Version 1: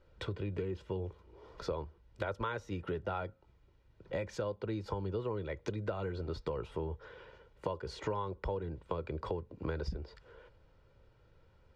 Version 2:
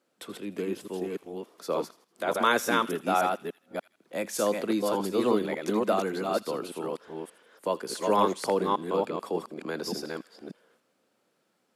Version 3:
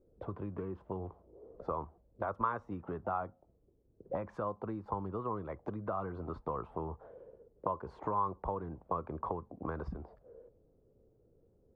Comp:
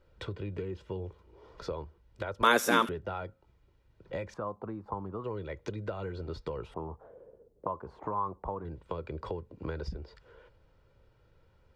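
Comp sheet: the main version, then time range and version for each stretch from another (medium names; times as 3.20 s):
1
2.43–2.89 s: from 2
4.34–5.24 s: from 3
6.74–8.65 s: from 3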